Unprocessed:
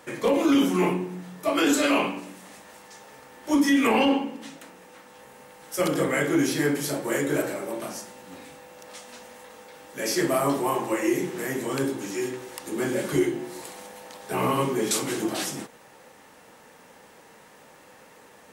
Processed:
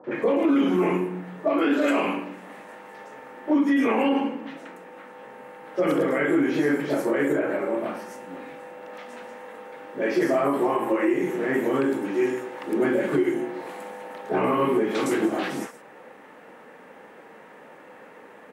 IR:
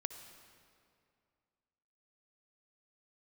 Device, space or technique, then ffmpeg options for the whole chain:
DJ mixer with the lows and highs turned down: -filter_complex "[0:a]asettb=1/sr,asplit=3[s0][s1][s2];[s0]atrim=end=7.244[s3];[s1]atrim=start=7.24:end=7.79,asetpts=PTS-STARTPTS,afade=t=in:d=0.004:c=qsin,afade=t=out:st=0.546:d=0.004:c=qsin,acrossover=split=3200[s4][s5];[s5]acompressor=threshold=0.00355:ratio=4:attack=1:release=60[s6];[s4][s6]amix=inputs=2:normalize=0[s7];[s2]atrim=start=7.786[s8];[s3][s7]acrossfade=d=0.004:c1=hsin:c2=qsin[s9];[s9][s8]acrossfade=d=0.004:c1=qsin:c2=hsin,acrossover=split=180 2500:gain=0.141 1 0.126[s10][s11][s12];[s10][s11][s12]amix=inputs=3:normalize=0,acrossover=split=930|5200[s13][s14][s15];[s14]adelay=40[s16];[s15]adelay=150[s17];[s13][s16][s17]amix=inputs=3:normalize=0,alimiter=limit=0.0944:level=0:latency=1:release=138,volume=2.24"

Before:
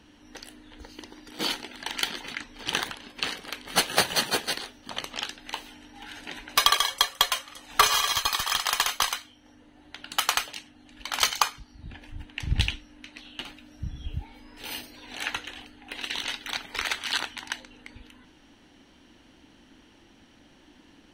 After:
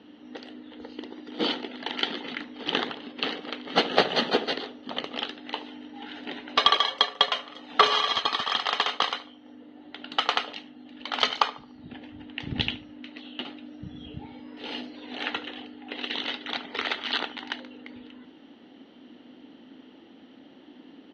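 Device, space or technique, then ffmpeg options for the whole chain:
kitchen radio: -filter_complex "[0:a]asettb=1/sr,asplit=3[s0][s1][s2];[s0]atrim=end=8.454[s3];[s1]atrim=start=8.45:end=8.88,asetpts=PTS-STARTPTS,afade=t=in:d=0.004:c=qsin,afade=t=out:st=0.426:d=0.004:c=qsin,highpass=120[s4];[s2]atrim=start=8.876[s5];[s3][s4]acrossfade=d=0.004:c1=hsin:c2=qsin[s6];[s6][s5]acrossfade=d=0.004:c1=qsin:c2=hsin,highpass=220,equalizer=f=250:t=q:w=4:g=7,equalizer=f=450:t=q:w=4:g=4,equalizer=f=1000:t=q:w=4:g=-6,equalizer=f=1600:t=q:w=4:g=-7,equalizer=f=2400:t=q:w=4:g=-8,lowpass=f=3500:w=0.5412,lowpass=f=3500:w=1.3066,asplit=2[s7][s8];[s8]adelay=73,lowpass=f=930:p=1,volume=0.251,asplit=2[s9][s10];[s10]adelay=73,lowpass=f=930:p=1,volume=0.52,asplit=2[s11][s12];[s12]adelay=73,lowpass=f=930:p=1,volume=0.52,asplit=2[s13][s14];[s14]adelay=73,lowpass=f=930:p=1,volume=0.52,asplit=2[s15][s16];[s16]adelay=73,lowpass=f=930:p=1,volume=0.52[s17];[s7][s9][s11][s13][s15][s17]amix=inputs=6:normalize=0,volume=1.78"

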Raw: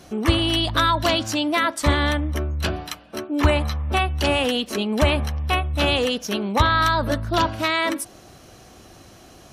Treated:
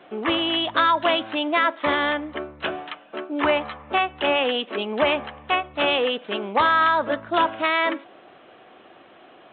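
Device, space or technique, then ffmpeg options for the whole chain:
telephone: -af "highpass=370,lowpass=3400,volume=1.19" -ar 8000 -c:a pcm_mulaw

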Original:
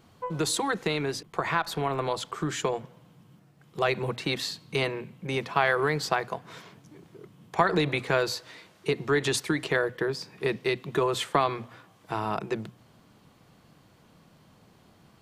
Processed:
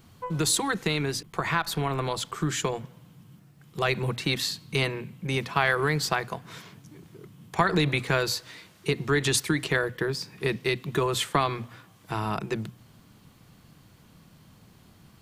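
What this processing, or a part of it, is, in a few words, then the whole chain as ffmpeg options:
smiley-face EQ: -af "lowshelf=f=150:g=5.5,equalizer=f=590:t=o:w=1.8:g=-5.5,highshelf=f=9700:g=8,volume=1.33"

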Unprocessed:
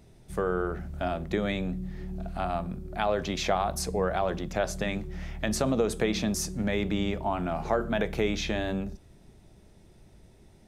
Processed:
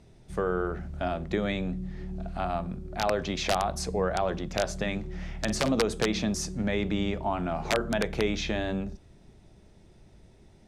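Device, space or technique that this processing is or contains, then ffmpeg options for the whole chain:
overflowing digital effects unit: -filter_complex "[0:a]aeval=exprs='(mod(5.62*val(0)+1,2)-1)/5.62':c=same,lowpass=8000,asettb=1/sr,asplit=3[s0][s1][s2];[s0]atrim=end=4.994[s3];[s1]atrim=start=4.99:end=5.76,asetpts=PTS-STARTPTS,afade=t=in:d=0.004:c=qsin,afade=t=out:st=0.766:d=0.004:c=qsin,asplit=2[s4][s5];[s5]adelay=49,volume=0.282[s6];[s4][s6]amix=inputs=2:normalize=0,atrim=end_sample=33957[s7];[s2]atrim=start=5.756[s8];[s3][s7]acrossfade=d=0.004:c1=hsin:c2=qsin[s9];[s9][s8]acrossfade=d=0.004:c1=qsin:c2=hsin"

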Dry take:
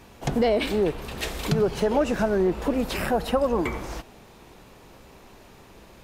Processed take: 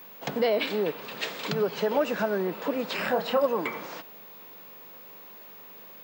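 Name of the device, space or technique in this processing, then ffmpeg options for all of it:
old television with a line whistle: -filter_complex "[0:a]highpass=f=200:w=0.5412,highpass=f=200:w=1.3066,equalizer=f=240:t=q:w=4:g=-7,equalizer=f=350:t=q:w=4:g=-9,equalizer=f=740:t=q:w=4:g=-5,equalizer=f=5900:t=q:w=4:g=-5,lowpass=f=6500:w=0.5412,lowpass=f=6500:w=1.3066,aeval=exprs='val(0)+0.00562*sin(2*PI*15625*n/s)':c=same,asettb=1/sr,asplit=3[s0][s1][s2];[s0]atrim=end=2.954[s3];[s1]atrim=start=2.95:end=3.46,asetpts=PTS-STARTPTS,afade=t=in:d=0.004:c=qsin,afade=t=out:st=0.506:d=0.004:c=qsin,asplit=2[s4][s5];[s5]adelay=28,volume=0.531[s6];[s4][s6]amix=inputs=2:normalize=0,atrim=end_sample=22491[s7];[s2]atrim=start=3.456[s8];[s3][s7]acrossfade=d=0.004:c1=hsin:c2=qsin[s9];[s9][s8]acrossfade=d=0.004:c1=qsin:c2=hsin"

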